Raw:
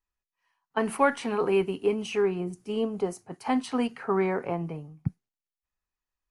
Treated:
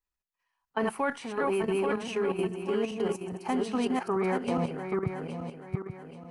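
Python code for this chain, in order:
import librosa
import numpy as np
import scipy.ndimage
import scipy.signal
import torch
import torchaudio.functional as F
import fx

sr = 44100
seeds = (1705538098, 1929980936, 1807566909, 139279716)

y = fx.reverse_delay_fb(x, sr, ms=416, feedback_pct=60, wet_db=-3.0)
y = fx.level_steps(y, sr, step_db=9)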